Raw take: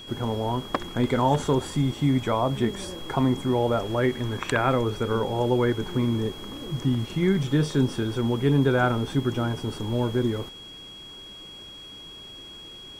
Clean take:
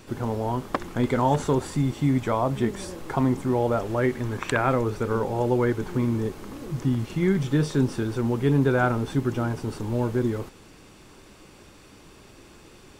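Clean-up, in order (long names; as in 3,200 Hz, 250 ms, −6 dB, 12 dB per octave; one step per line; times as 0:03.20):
notch filter 3,300 Hz, Q 30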